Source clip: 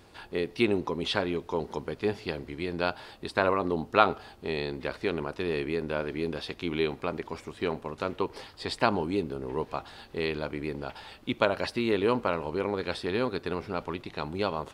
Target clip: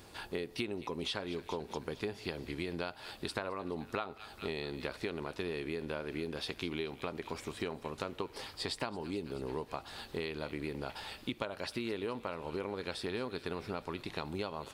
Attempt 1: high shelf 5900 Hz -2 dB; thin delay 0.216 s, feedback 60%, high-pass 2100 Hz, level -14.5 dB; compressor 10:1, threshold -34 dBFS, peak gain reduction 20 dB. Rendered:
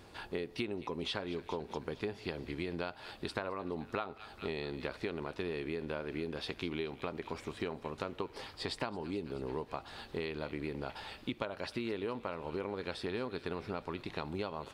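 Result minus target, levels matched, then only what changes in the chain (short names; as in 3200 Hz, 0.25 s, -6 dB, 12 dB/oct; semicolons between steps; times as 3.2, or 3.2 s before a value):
8000 Hz band -5.5 dB
change: high shelf 5900 Hz +8.5 dB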